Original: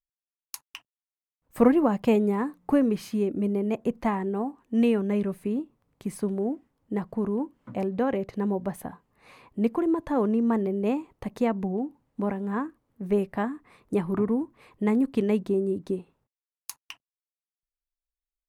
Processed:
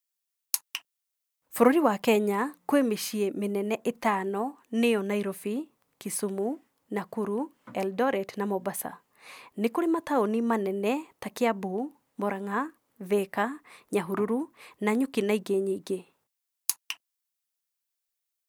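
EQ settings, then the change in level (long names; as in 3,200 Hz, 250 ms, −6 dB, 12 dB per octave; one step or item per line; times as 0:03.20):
spectral tilt +2.5 dB per octave
low-shelf EQ 120 Hz −11.5 dB
+3.5 dB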